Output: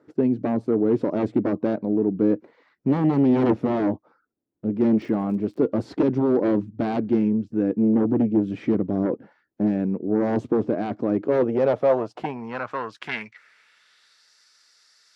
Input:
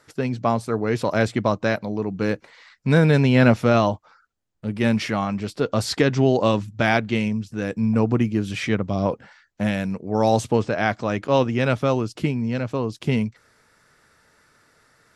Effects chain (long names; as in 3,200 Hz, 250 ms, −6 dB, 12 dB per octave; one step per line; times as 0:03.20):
harmonic generator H 3 −8 dB, 4 −14 dB, 7 −16 dB, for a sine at −2.5 dBFS
band-pass filter sweep 310 Hz → 4,900 Hz, 0:11.12–0:14.32
0:04.97–0:05.58: surface crackle 41 per second −50 dBFS
level +8 dB